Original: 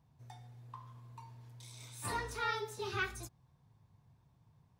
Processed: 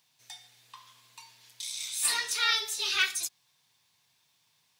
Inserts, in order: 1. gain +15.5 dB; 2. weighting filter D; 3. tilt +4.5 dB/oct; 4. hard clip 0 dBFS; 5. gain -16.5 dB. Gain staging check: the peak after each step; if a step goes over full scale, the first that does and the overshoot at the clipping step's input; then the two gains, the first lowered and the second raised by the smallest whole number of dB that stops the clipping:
-8.0, -1.5, +3.5, 0.0, -16.5 dBFS; step 3, 3.5 dB; step 1 +11.5 dB, step 5 -12.5 dB

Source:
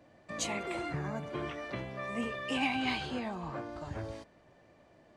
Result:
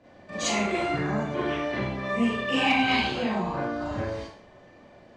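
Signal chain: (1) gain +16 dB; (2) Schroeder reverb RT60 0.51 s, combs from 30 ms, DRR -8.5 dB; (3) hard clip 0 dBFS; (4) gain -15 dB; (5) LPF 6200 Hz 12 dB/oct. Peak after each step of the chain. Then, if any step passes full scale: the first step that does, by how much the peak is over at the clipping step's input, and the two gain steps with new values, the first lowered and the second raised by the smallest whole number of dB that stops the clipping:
-3.5, +4.0, 0.0, -15.0, -14.5 dBFS; step 2, 4.0 dB; step 1 +12 dB, step 4 -11 dB

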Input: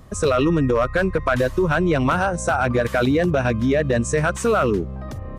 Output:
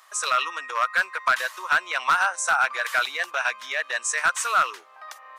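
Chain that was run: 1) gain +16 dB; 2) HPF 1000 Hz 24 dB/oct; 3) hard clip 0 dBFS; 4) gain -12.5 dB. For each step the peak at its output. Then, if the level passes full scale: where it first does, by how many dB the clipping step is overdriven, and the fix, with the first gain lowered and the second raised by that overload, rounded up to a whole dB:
+5.5, +5.0, 0.0, -12.5 dBFS; step 1, 5.0 dB; step 1 +11 dB, step 4 -7.5 dB

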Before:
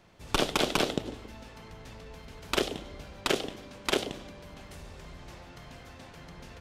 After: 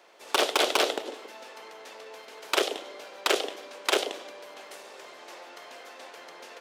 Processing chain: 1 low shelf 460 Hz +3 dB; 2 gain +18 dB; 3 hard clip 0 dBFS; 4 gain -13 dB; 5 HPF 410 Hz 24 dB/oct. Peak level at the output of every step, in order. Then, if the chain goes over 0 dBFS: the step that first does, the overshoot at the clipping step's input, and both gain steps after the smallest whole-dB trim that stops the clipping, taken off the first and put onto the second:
-10.5, +7.5, 0.0, -13.0, -6.0 dBFS; step 2, 7.5 dB; step 2 +10 dB, step 4 -5 dB

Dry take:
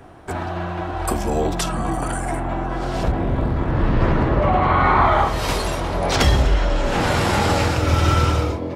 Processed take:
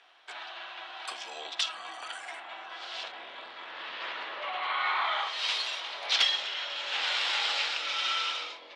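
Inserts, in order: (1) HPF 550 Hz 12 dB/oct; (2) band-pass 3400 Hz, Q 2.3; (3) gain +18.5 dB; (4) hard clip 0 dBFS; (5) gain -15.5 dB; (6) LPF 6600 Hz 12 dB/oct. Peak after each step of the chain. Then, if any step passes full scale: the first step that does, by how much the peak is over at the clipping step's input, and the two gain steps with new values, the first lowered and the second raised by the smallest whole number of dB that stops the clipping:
-6.0, -13.0, +5.5, 0.0, -15.5, -14.5 dBFS; step 3, 5.5 dB; step 3 +12.5 dB, step 5 -9.5 dB

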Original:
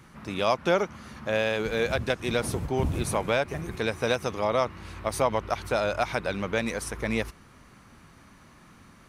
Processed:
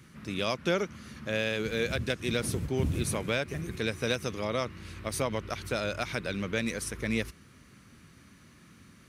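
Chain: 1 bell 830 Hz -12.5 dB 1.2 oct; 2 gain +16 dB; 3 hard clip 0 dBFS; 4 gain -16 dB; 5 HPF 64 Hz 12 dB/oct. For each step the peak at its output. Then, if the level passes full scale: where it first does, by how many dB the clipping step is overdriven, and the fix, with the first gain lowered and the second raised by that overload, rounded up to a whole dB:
-13.0, +3.0, 0.0, -16.0, -14.5 dBFS; step 2, 3.0 dB; step 2 +13 dB, step 4 -13 dB

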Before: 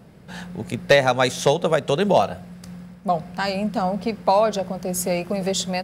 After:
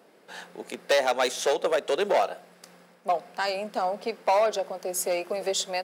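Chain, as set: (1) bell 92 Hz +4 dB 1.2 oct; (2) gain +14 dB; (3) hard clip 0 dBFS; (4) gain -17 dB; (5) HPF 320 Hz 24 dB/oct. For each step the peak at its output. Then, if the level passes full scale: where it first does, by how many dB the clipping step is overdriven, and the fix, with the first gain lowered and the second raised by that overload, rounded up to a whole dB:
-5.0, +9.0, 0.0, -17.0, -10.0 dBFS; step 2, 9.0 dB; step 2 +5 dB, step 4 -8 dB

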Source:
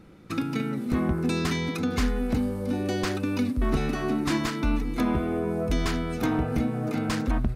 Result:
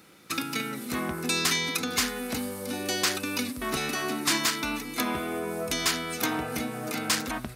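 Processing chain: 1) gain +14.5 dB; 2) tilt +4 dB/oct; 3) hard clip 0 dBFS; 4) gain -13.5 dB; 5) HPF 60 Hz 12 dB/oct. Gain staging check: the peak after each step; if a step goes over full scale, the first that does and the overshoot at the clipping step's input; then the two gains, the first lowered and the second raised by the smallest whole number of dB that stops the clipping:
-1.0, +5.5, 0.0, -13.5, -13.0 dBFS; step 2, 5.5 dB; step 1 +8.5 dB, step 4 -7.5 dB

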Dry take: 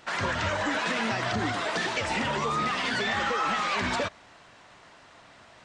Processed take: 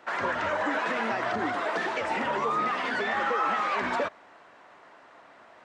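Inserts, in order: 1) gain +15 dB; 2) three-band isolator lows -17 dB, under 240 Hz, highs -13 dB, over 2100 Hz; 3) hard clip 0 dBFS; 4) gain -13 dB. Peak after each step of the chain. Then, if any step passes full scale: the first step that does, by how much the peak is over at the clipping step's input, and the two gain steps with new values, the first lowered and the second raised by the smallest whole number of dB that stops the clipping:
-0.5, -2.5, -2.5, -15.5 dBFS; no overload

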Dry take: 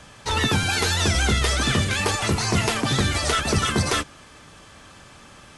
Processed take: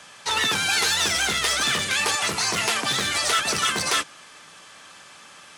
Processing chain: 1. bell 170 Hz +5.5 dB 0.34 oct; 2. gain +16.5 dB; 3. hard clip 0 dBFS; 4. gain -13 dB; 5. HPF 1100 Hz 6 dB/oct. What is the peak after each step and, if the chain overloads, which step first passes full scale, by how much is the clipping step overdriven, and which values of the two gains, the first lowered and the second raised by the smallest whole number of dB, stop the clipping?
-9.5, +7.0, 0.0, -13.0, -9.5 dBFS; step 2, 7.0 dB; step 2 +9.5 dB, step 4 -6 dB

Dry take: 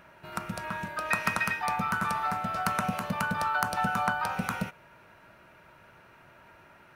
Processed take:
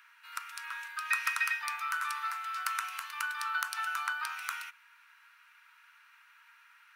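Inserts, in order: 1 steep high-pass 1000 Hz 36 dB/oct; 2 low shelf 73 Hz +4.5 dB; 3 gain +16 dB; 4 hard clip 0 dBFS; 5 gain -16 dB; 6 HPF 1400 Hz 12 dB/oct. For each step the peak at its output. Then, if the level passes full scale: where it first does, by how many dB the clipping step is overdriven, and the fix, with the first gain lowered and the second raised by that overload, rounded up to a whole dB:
-10.5, -10.5, +5.5, 0.0, -16.0, -12.5 dBFS; step 3, 5.5 dB; step 3 +10 dB, step 5 -10 dB

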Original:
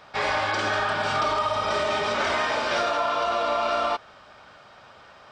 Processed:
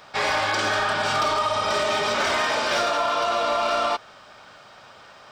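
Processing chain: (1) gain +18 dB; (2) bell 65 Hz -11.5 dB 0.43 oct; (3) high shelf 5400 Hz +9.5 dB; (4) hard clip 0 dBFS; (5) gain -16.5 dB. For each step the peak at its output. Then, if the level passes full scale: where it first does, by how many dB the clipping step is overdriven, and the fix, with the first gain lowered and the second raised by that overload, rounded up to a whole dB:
+4.0, +4.0, +5.5, 0.0, -16.5 dBFS; step 1, 5.5 dB; step 1 +12 dB, step 5 -10.5 dB

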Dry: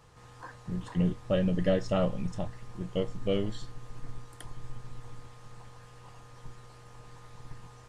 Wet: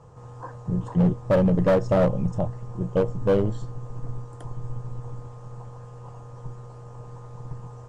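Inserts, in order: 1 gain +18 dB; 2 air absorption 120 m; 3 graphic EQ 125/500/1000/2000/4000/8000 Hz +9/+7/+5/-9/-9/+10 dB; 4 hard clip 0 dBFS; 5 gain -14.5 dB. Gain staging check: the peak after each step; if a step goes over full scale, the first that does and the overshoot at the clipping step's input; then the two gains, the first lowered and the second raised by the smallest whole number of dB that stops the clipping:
+3.0, +3.0, +9.5, 0.0, -14.5 dBFS; step 1, 9.5 dB; step 1 +8 dB, step 5 -4.5 dB

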